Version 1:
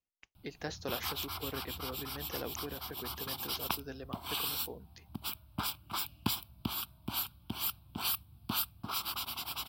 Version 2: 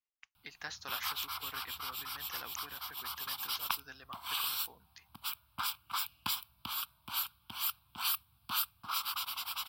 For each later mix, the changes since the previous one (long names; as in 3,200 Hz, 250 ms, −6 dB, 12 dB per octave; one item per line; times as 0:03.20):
master: add low shelf with overshoot 740 Hz −14 dB, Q 1.5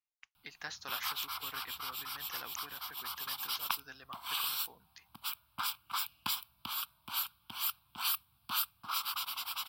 background: add parametric band 74 Hz −5.5 dB 1.5 octaves